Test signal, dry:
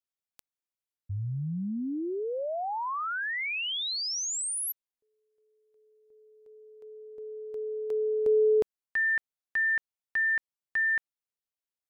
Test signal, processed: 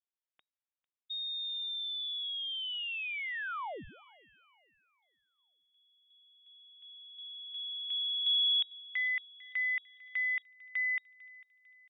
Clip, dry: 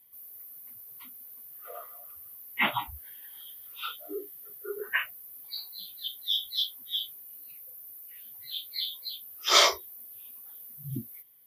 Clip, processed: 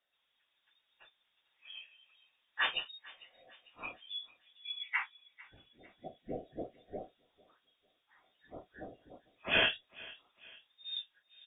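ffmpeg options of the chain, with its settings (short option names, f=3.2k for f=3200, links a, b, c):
-filter_complex "[0:a]asplit=2[a][b];[b]adelay=449,lowpass=f=2.3k:p=1,volume=-19.5dB,asplit=2[c][d];[d]adelay=449,lowpass=f=2.3k:p=1,volume=0.54,asplit=2[e][f];[f]adelay=449,lowpass=f=2.3k:p=1,volume=0.54,asplit=2[g][h];[h]adelay=449,lowpass=f=2.3k:p=1,volume=0.54[i];[a][c][e][g][i]amix=inputs=5:normalize=0,lowpass=f=3.2k:t=q:w=0.5098,lowpass=f=3.2k:t=q:w=0.6013,lowpass=f=3.2k:t=q:w=0.9,lowpass=f=3.2k:t=q:w=2.563,afreqshift=-3800,volume=-5.5dB"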